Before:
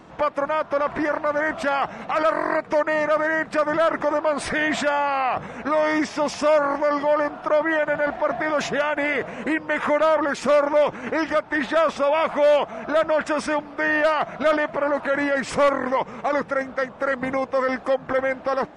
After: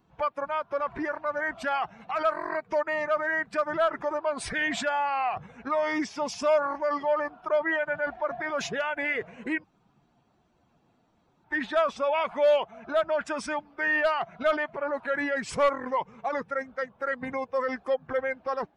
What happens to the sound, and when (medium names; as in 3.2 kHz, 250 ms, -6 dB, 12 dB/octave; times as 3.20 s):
9.64–11.44 s: room tone
whole clip: expander on every frequency bin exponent 1.5; peaking EQ 240 Hz -4 dB 2.5 oct; trim -1.5 dB